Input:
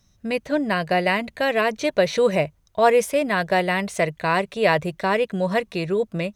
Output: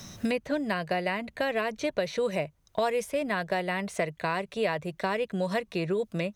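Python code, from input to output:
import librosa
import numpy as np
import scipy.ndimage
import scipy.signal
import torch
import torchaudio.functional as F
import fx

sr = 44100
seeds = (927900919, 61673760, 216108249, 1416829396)

y = fx.band_squash(x, sr, depth_pct=100)
y = y * 10.0 ** (-9.0 / 20.0)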